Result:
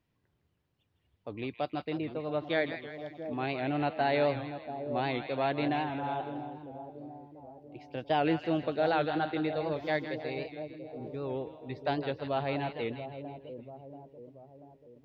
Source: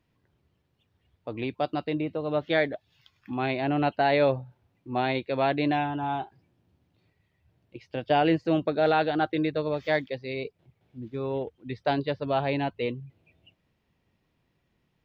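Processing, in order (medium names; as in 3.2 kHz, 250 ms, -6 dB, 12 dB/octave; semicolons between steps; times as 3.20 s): two-band feedback delay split 780 Hz, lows 686 ms, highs 161 ms, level -9 dB; warped record 78 rpm, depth 100 cents; trim -5.5 dB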